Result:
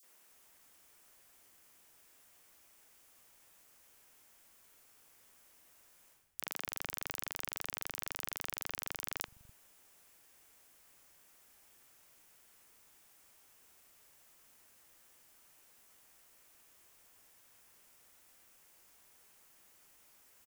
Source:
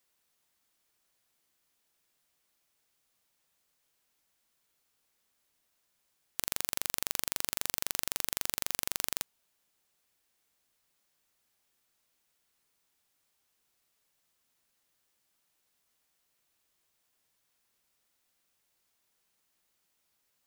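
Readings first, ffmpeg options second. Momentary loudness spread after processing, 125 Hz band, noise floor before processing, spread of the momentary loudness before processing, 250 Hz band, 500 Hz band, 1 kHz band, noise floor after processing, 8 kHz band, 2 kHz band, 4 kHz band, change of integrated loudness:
3 LU, -8.5 dB, -77 dBFS, 5 LU, -8.0 dB, -6.0 dB, -6.0 dB, -65 dBFS, -6.5 dB, -7.0 dB, -10.5 dB, -7.0 dB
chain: -filter_complex "[0:a]equalizer=f=4000:t=o:w=0.46:g=-3.5,areverse,acompressor=threshold=0.00631:ratio=20,areverse,acrossover=split=160|4100[s0][s1][s2];[s1]adelay=30[s3];[s0]adelay=280[s4];[s4][s3][s2]amix=inputs=3:normalize=0,volume=4.47"

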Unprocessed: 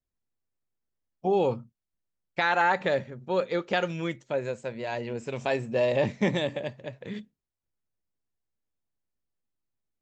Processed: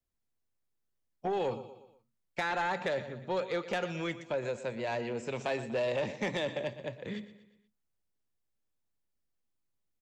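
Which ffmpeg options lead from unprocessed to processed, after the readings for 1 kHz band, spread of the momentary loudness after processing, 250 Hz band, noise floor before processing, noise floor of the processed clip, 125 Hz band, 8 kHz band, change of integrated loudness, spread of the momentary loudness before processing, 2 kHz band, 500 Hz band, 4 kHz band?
-7.0 dB, 10 LU, -7.0 dB, under -85 dBFS, -81 dBFS, -7.5 dB, no reading, -6.5 dB, 14 LU, -6.5 dB, -6.0 dB, -4.5 dB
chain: -filter_complex "[0:a]acrossover=split=190|500|3300[s0][s1][s2][s3];[s0]acompressor=threshold=0.00501:ratio=4[s4];[s1]acompressor=threshold=0.0141:ratio=4[s5];[s2]acompressor=threshold=0.0316:ratio=4[s6];[s3]acompressor=threshold=0.00708:ratio=4[s7];[s4][s5][s6][s7]amix=inputs=4:normalize=0,aecho=1:1:120|240|360|480:0.178|0.0836|0.0393|0.0185,asoftclip=type=tanh:threshold=0.0596"

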